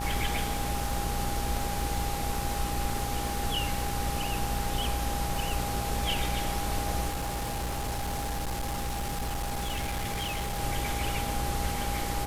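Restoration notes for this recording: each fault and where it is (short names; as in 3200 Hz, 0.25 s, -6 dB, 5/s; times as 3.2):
buzz 60 Hz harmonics 28 -35 dBFS
crackle 110/s -35 dBFS
tone 810 Hz -35 dBFS
7.08–10.6 clipped -28.5 dBFS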